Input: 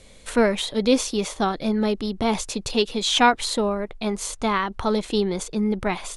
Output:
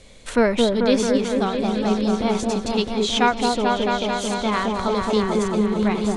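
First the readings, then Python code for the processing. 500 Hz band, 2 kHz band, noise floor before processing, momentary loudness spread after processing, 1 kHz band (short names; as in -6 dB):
+3.0 dB, +0.5 dB, -46 dBFS, 4 LU, +1.5 dB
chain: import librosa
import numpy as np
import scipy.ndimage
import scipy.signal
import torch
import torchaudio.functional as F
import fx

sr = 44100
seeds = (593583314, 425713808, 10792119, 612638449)

y = fx.echo_opening(x, sr, ms=220, hz=750, octaves=1, feedback_pct=70, wet_db=0)
y = fx.rider(y, sr, range_db=10, speed_s=2.0)
y = scipy.signal.sosfilt(scipy.signal.butter(2, 8700.0, 'lowpass', fs=sr, output='sos'), y)
y = y * librosa.db_to_amplitude(-2.0)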